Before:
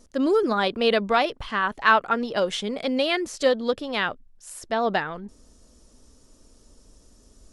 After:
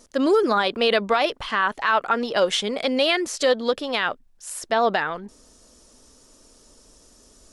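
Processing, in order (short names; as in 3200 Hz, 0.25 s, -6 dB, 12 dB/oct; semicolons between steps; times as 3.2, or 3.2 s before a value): low shelf 260 Hz -11.5 dB; limiter -16.5 dBFS, peak gain reduction 11 dB; gain +6.5 dB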